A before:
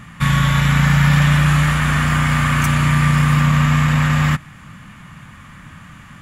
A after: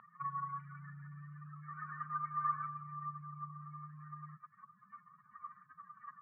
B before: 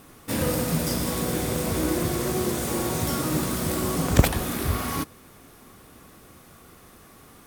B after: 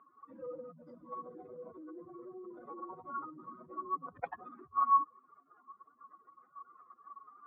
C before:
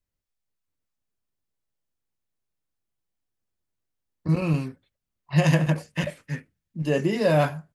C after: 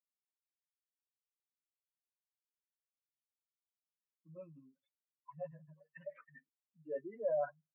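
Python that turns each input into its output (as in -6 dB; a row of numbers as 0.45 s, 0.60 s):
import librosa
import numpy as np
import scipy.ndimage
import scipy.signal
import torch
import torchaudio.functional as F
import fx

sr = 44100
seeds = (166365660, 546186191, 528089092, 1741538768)

y = fx.spec_expand(x, sr, power=3.3)
y = fx.ladder_bandpass(y, sr, hz=1300.0, resonance_pct=65)
y = fx.air_absorb(y, sr, metres=380.0)
y = y * 10.0 ** (12.0 / 20.0)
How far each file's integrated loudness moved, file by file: -28.5 LU, -12.5 LU, -17.0 LU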